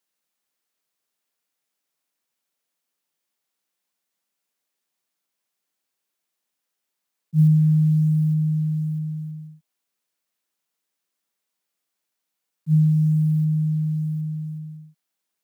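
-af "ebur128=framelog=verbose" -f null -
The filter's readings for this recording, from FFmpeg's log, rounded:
Integrated loudness:
  I:         -20.9 LUFS
  Threshold: -32.0 LUFS
Loudness range:
  LRA:        10.7 LU
  Threshold: -44.3 LUFS
  LRA low:   -32.5 LUFS
  LRA high:  -21.9 LUFS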